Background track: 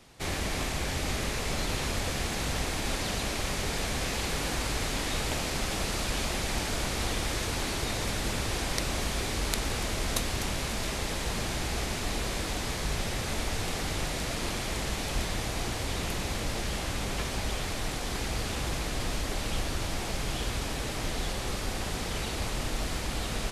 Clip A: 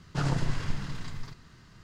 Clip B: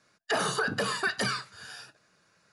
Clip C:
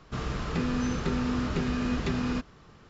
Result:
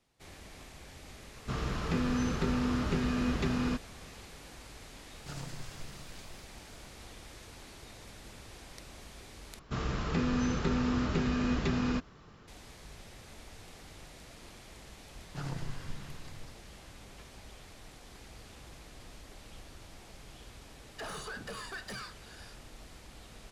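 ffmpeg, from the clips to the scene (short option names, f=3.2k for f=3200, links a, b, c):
-filter_complex "[3:a]asplit=2[a][b];[1:a]asplit=2[c][d];[0:a]volume=-19dB[e];[c]aemphasis=mode=production:type=75fm[f];[2:a]asoftclip=type=tanh:threshold=-27dB[g];[e]asplit=2[h][i];[h]atrim=end=9.594[j];[b]atrim=end=2.89,asetpts=PTS-STARTPTS,volume=-1.5dB[k];[i]atrim=start=12.476[l];[a]atrim=end=2.89,asetpts=PTS-STARTPTS,volume=-2dB,afade=t=in:d=0.004:c=hsin,afade=t=out:st=2.886:d=0.004:c=hsin,adelay=1360[m];[f]atrim=end=1.83,asetpts=PTS-STARTPTS,volume=-15dB,afade=t=in:d=0.004:c=hsin,afade=t=out:st=1.826:d=0.004:c=hsin,adelay=5110[n];[d]atrim=end=1.83,asetpts=PTS-STARTPTS,volume=-10.5dB,afade=t=in:d=0.004:c=hsin,afade=t=out:st=1.826:d=0.004:c=hsin,adelay=15200[o];[g]atrim=end=2.52,asetpts=PTS-STARTPTS,volume=-10dB,afade=t=in:d=0.004:c=hsin,afade=t=out:st=2.516:d=0.004:c=hsin,adelay=20690[p];[j][k]acrossfade=d=0.004:c1=hsin:c2=hsin[q];[q][l]acrossfade=d=0.004:c1=hsin:c2=hsin[r];[r][m][n][o][p]amix=inputs=5:normalize=0"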